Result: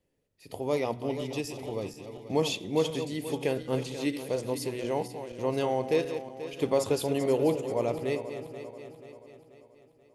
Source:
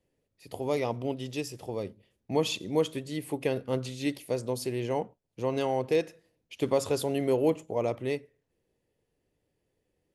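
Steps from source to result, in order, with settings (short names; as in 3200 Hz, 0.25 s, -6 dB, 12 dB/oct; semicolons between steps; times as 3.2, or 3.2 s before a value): regenerating reverse delay 0.242 s, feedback 68%, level -10 dB; de-hum 122.5 Hz, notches 31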